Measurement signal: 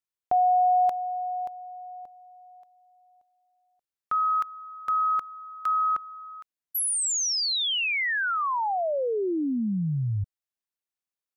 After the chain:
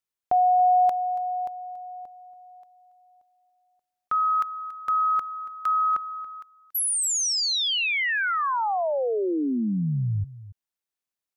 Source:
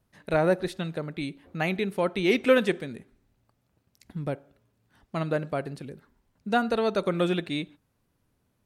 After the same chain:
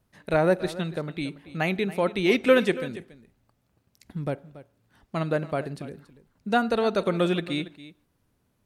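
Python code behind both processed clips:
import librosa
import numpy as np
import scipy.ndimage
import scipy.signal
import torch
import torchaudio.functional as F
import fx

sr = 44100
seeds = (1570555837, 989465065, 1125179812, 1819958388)

y = x + 10.0 ** (-16.5 / 20.0) * np.pad(x, (int(281 * sr / 1000.0), 0))[:len(x)]
y = F.gain(torch.from_numpy(y), 1.5).numpy()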